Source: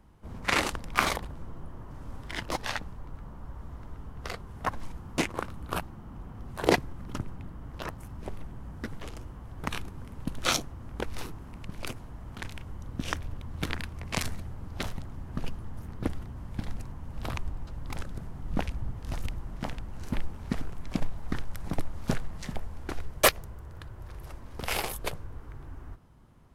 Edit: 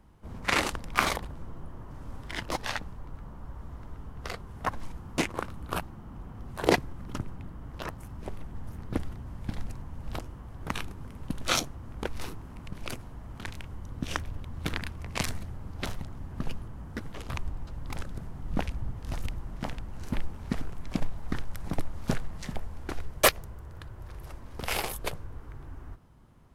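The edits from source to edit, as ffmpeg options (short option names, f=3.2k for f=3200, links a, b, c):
-filter_complex "[0:a]asplit=5[a][b][c][d][e];[a]atrim=end=8.552[f];[b]atrim=start=15.648:end=17.292[g];[c]atrim=start=9.158:end=15.652[h];[d]atrim=start=8.548:end=9.162[i];[e]atrim=start=17.288[j];[f][g]acrossfade=d=0.004:c1=hsin:c2=hsin[k];[k][h]acrossfade=d=0.004:c1=hsin:c2=hsin[l];[l][i]acrossfade=d=0.004:c1=hsin:c2=hsin[m];[m][j]acrossfade=d=0.004:c1=hsin:c2=hsin"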